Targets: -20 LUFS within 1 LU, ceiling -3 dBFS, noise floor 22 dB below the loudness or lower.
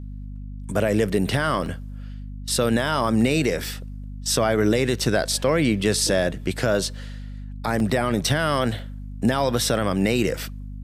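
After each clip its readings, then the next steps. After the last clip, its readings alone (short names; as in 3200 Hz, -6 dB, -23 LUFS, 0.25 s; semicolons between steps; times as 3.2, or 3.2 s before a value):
dropouts 3; longest dropout 1.3 ms; hum 50 Hz; harmonics up to 250 Hz; hum level -32 dBFS; loudness -22.5 LUFS; peak -9.0 dBFS; loudness target -20.0 LUFS
-> interpolate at 1.66/7.8/8.79, 1.3 ms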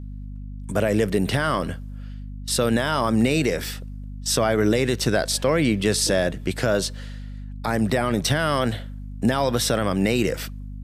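dropouts 0; hum 50 Hz; harmonics up to 250 Hz; hum level -32 dBFS
-> notches 50/100/150/200/250 Hz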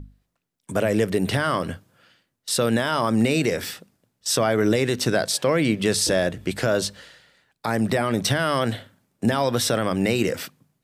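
hum none; loudness -23.0 LUFS; peak -9.0 dBFS; loudness target -20.0 LUFS
-> gain +3 dB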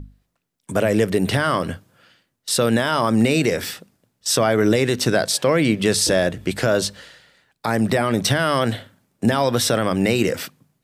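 loudness -20.0 LUFS; peak -6.0 dBFS; noise floor -73 dBFS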